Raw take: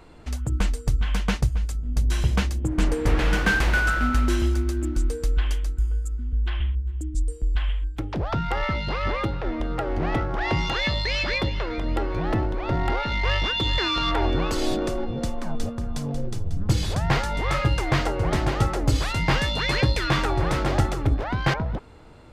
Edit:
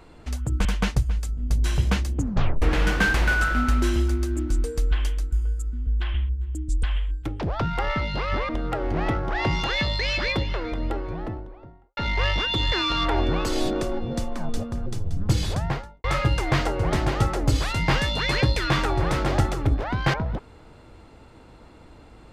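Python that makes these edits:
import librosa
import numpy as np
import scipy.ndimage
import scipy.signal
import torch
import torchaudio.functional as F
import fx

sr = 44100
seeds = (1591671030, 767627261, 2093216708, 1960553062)

y = fx.studio_fade_out(x, sr, start_s=11.48, length_s=1.55)
y = fx.studio_fade_out(y, sr, start_s=16.86, length_s=0.58)
y = fx.edit(y, sr, fx.cut(start_s=0.65, length_s=0.46),
    fx.tape_stop(start_s=2.63, length_s=0.45),
    fx.cut(start_s=7.29, length_s=0.27),
    fx.cut(start_s=9.22, length_s=0.33),
    fx.cut(start_s=15.92, length_s=0.34), tone=tone)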